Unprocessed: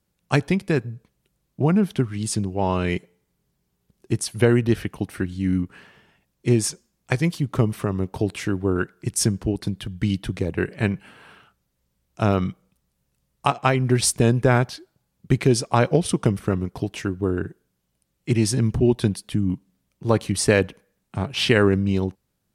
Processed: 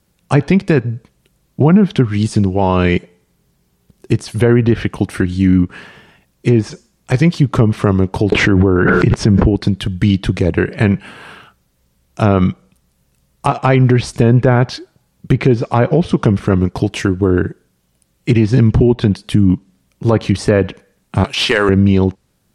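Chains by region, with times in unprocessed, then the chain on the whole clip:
8.32–9.50 s: treble shelf 10 kHz -6.5 dB + level flattener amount 100%
21.24–21.69 s: high-pass 850 Hz 6 dB/octave + treble shelf 2.5 kHz +10.5 dB
whole clip: de-esser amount 80%; low-pass that closes with the level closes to 2.3 kHz, closed at -13.5 dBFS; loudness maximiser +13.5 dB; trim -1 dB

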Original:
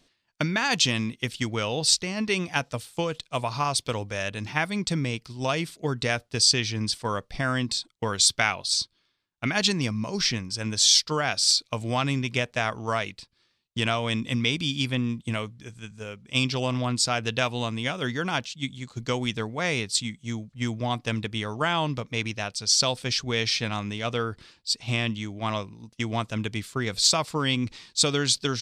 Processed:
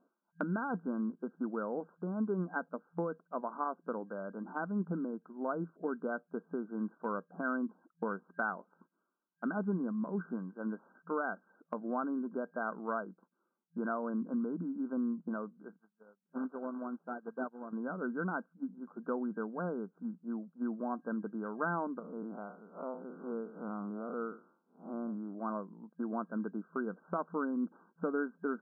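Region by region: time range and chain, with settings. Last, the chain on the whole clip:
15.76–17.73 s: CVSD coder 16 kbps + hum notches 60/120/180 Hz + upward expansion 2.5:1, over -46 dBFS
21.99–25.35 s: spectral blur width 123 ms + elliptic low-pass 1.4 kHz
whole clip: FFT band-pass 170–1600 Hz; dynamic bell 800 Hz, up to -6 dB, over -40 dBFS, Q 0.84; trim -4 dB

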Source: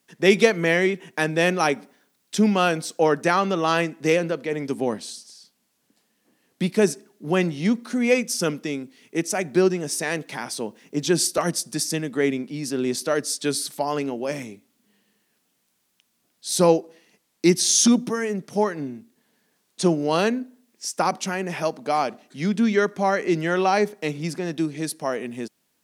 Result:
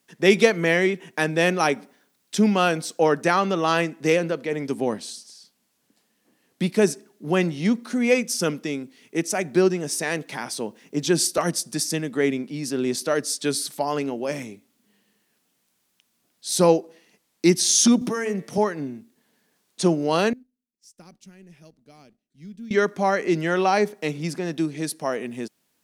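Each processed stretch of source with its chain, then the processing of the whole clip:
18.01–18.58 s: de-hum 113 Hz, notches 39 + three bands compressed up and down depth 70%
20.33–22.71 s: companding laws mixed up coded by A + amplifier tone stack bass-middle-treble 10-0-1
whole clip: none

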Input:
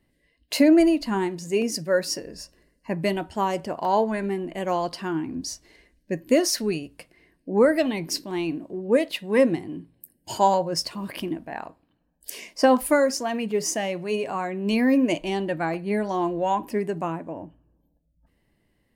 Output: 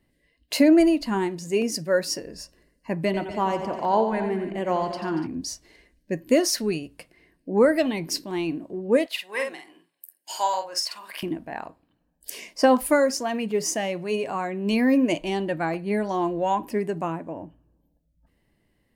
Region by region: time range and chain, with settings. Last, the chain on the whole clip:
3.05–5.27 s: treble shelf 5.5 kHz -11 dB + multi-tap echo 88/143/235/290 ms -9/-17/-14/-14.5 dB
9.06–11.23 s: high-pass 1 kHz + doubling 48 ms -5 dB
whole clip: none

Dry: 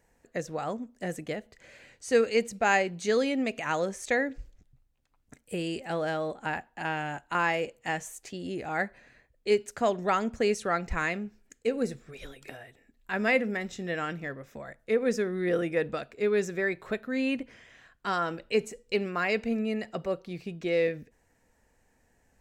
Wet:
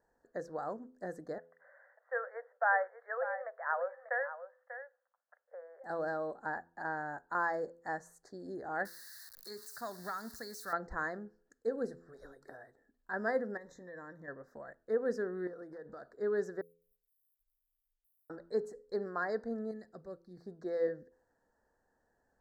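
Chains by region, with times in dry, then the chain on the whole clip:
1.38–5.84 s: Chebyshev band-pass 520–2600 Hz, order 5 + peaking EQ 1.5 kHz +4 dB 1 oct + delay 591 ms -11.5 dB
8.85–10.73 s: zero-crossing glitches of -30.5 dBFS + FFT filter 180 Hz 0 dB, 460 Hz -10 dB, 3.7 kHz +15 dB, 6.8 kHz +10 dB, 11 kHz +14 dB + compression 5:1, threshold -27 dBFS
13.57–14.28 s: rippled EQ curve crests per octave 1.1, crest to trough 10 dB + compression 5:1, threshold -38 dBFS
15.47–16.08 s: compression 16:1, threshold -36 dBFS + hard clipper -35 dBFS
16.61–18.30 s: sorted samples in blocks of 16 samples + inverse Chebyshev band-stop 120–4600 Hz, stop band 60 dB + compression 3:1, threshold -59 dBFS
19.71–20.37 s: peaking EQ 850 Hz -13.5 dB 2.6 oct + tape noise reduction on one side only decoder only
whole clip: elliptic band-stop 1.7–4.3 kHz, stop band 60 dB; tone controls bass -10 dB, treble -14 dB; de-hum 84.69 Hz, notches 6; trim -4.5 dB

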